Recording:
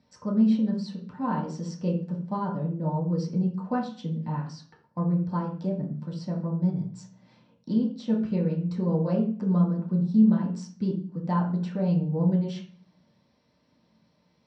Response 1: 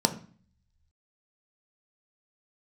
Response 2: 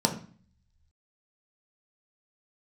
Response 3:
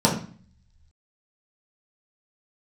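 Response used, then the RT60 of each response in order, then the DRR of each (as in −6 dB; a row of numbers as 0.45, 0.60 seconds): 3; 0.45, 0.45, 0.45 seconds; 6.0, 2.0, −5.0 decibels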